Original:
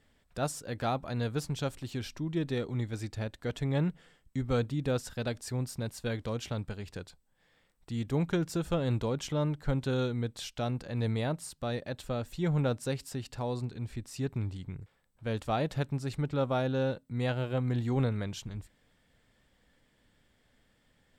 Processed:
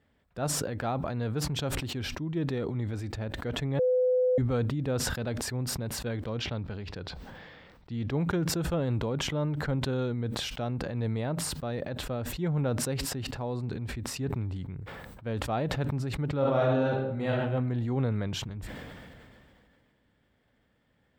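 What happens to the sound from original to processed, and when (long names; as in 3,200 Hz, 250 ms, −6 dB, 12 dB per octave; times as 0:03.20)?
0:03.79–0:04.38: beep over 505 Hz −21 dBFS
0:06.27–0:08.17: high shelf with overshoot 6,700 Hz −10.5 dB, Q 1.5
0:16.38–0:17.37: thrown reverb, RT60 0.82 s, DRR −3 dB
whole clip: high-pass filter 48 Hz 12 dB per octave; parametric band 8,700 Hz −12.5 dB 2.3 octaves; level that may fall only so fast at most 24 dB per second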